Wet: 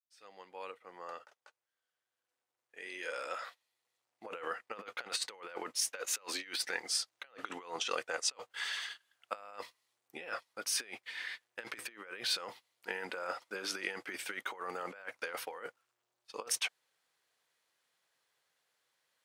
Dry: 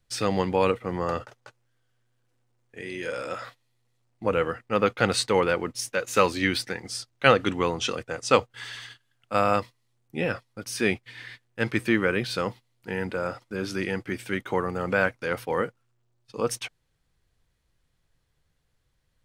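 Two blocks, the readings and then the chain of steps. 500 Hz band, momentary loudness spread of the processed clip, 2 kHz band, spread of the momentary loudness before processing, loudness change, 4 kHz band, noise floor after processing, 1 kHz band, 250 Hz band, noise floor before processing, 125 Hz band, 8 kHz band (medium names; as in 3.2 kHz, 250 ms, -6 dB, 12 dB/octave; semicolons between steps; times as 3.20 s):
-19.0 dB, 14 LU, -11.0 dB, 15 LU, -12.0 dB, -5.0 dB, under -85 dBFS, -15.0 dB, -24.0 dB, -72 dBFS, -33.0 dB, -1.5 dB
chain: fade-in on the opening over 6.22 s; compressor with a negative ratio -31 dBFS, ratio -0.5; high-pass 630 Hz 12 dB/octave; trim -4.5 dB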